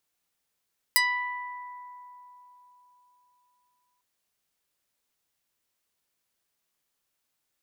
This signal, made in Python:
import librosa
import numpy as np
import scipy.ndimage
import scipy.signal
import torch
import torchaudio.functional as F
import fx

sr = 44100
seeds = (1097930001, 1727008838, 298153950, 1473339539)

y = fx.pluck(sr, length_s=3.05, note=83, decay_s=3.9, pick=0.26, brightness='medium')